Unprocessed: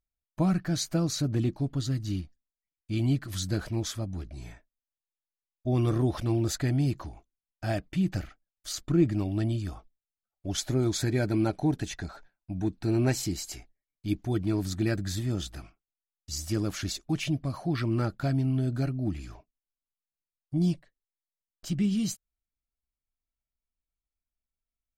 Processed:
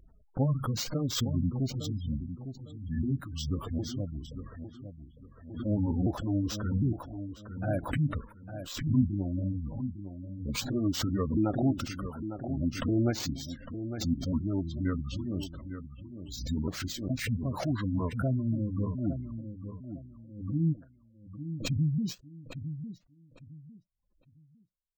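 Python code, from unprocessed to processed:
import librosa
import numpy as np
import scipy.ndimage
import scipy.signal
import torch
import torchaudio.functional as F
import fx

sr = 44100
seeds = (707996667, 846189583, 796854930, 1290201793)

y = fx.pitch_ramps(x, sr, semitones=-6.0, every_ms=758)
y = fx.echo_feedback(y, sr, ms=855, feedback_pct=27, wet_db=-10.0)
y = fx.env_lowpass(y, sr, base_hz=1600.0, full_db=-26.0)
y = fx.peak_eq(y, sr, hz=3100.0, db=-3.0, octaves=2.5)
y = np.repeat(y[::4], 4)[:len(y)]
y = fx.spec_gate(y, sr, threshold_db=-25, keep='strong')
y = fx.low_shelf(y, sr, hz=66.0, db=-8.0)
y = fx.pre_swell(y, sr, db_per_s=82.0)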